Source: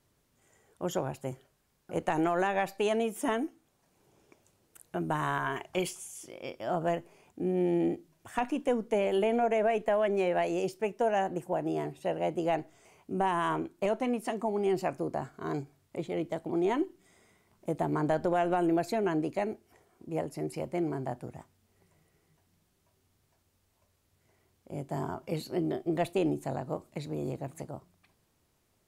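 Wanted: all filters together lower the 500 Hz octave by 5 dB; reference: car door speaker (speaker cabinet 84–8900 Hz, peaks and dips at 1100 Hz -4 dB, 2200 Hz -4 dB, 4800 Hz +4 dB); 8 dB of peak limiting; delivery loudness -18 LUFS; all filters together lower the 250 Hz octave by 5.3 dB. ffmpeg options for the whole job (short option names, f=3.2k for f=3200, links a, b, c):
-af "equalizer=f=250:t=o:g=-5.5,equalizer=f=500:t=o:g=-5,alimiter=level_in=1.5dB:limit=-24dB:level=0:latency=1,volume=-1.5dB,highpass=84,equalizer=f=1.1k:t=q:w=4:g=-4,equalizer=f=2.2k:t=q:w=4:g=-4,equalizer=f=4.8k:t=q:w=4:g=4,lowpass=f=8.9k:w=0.5412,lowpass=f=8.9k:w=1.3066,volume=20dB"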